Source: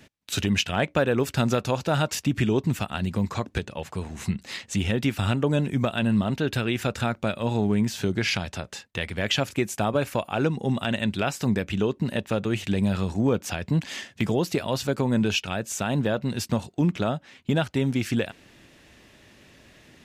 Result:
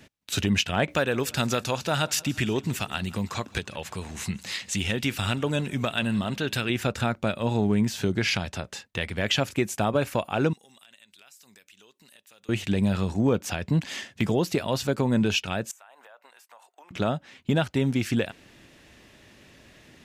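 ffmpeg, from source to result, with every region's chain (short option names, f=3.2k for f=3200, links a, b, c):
-filter_complex "[0:a]asettb=1/sr,asplit=3[a][b][c];[a]atrim=end=0.884[d];[b]atrim=start=0.88:end=6.7,asetpts=PTS-STARTPTS,afade=t=in:d=0.004:c=qsin,afade=t=out:st=5.816:d=0.004:c=qsin,tiltshelf=f=1.3k:g=-4.5,acompressor=mode=upward:threshold=-31dB:ratio=2.5:attack=3.2:release=140:knee=2.83:detection=peak,aecho=1:1:172|344|516|688:0.075|0.0405|0.0219|0.0118,atrim=end_sample=256662[e];[c]atrim=start=6.696[f];[d][e]acrossfade=d=0.004:c1=hsin:c2=qsin[g];[g][f]acrossfade=d=0.004:c1=qsin:c2=hsin,asettb=1/sr,asplit=3[h][i][j];[h]atrim=end=10.534[k];[i]atrim=start=10.53:end=12.49,asetpts=PTS-STARTPTS,afade=t=in:d=0.004:c=qsin,afade=t=out:st=1.956:d=0.004:c=qsin,aderivative,acompressor=threshold=-52dB:ratio=4:attack=3.2:release=140:knee=1:detection=peak[l];[j]atrim=start=12.486[m];[k][l]acrossfade=d=0.004:c1=hsin:c2=qsin[n];[n][m]acrossfade=d=0.004:c1=qsin:c2=hsin,asettb=1/sr,asplit=3[o][p][q];[o]atrim=end=15.714[r];[p]atrim=start=15.71:end=16.91,asetpts=PTS-STARTPTS,afade=t=in:d=0.004:c=qsin,afade=t=out:st=1.196:d=0.004:c=qsin,highpass=f=760:w=0.5412,highpass=f=760:w=1.3066,acompressor=threshold=-44dB:ratio=10:attack=3.2:release=140:knee=1:detection=peak,equalizer=f=4.5k:t=o:w=1.7:g=-13[s];[q]atrim=start=16.906[t];[r][s]acrossfade=d=0.004:c1=hsin:c2=qsin[u];[u][t]acrossfade=d=0.004:c1=qsin:c2=hsin"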